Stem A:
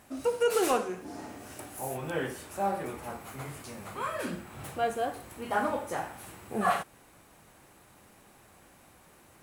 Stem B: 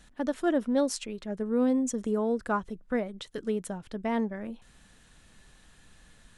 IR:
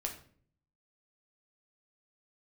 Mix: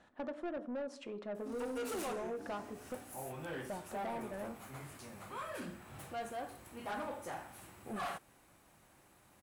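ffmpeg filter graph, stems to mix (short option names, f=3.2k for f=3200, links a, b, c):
-filter_complex "[0:a]adelay=1350,volume=-7.5dB[a];[1:a]acompressor=threshold=-32dB:ratio=12,bandpass=f=670:t=q:w=0.97:csg=0,volume=-1dB,asplit=3[b][c][d];[b]atrim=end=2.95,asetpts=PTS-STARTPTS,afade=t=out:st=2.946:d=0.004:c=hsin[e];[c]atrim=start=2.95:end=3.69,asetpts=PTS-STARTPTS,volume=0[f];[d]atrim=start=3.69,asetpts=PTS-STARTPTS,afade=t=in:d=0.004:c=hsin[g];[e][f][g]concat=n=3:v=0:a=1,asplit=2[h][i];[i]volume=-3.5dB[j];[2:a]atrim=start_sample=2205[k];[j][k]afir=irnorm=-1:irlink=0[l];[a][h][l]amix=inputs=3:normalize=0,bandreject=f=450:w=13,asoftclip=type=tanh:threshold=-35.5dB"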